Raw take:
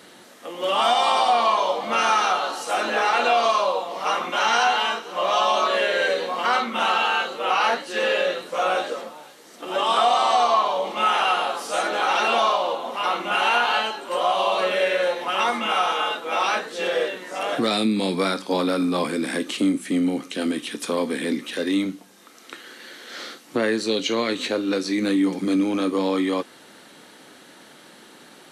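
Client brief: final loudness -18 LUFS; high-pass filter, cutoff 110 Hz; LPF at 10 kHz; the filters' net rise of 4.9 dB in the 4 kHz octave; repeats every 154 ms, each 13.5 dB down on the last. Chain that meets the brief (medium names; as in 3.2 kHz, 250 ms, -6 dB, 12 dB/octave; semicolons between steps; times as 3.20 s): high-pass 110 Hz; low-pass 10 kHz; peaking EQ 4 kHz +6.5 dB; feedback delay 154 ms, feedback 21%, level -13.5 dB; trim +2.5 dB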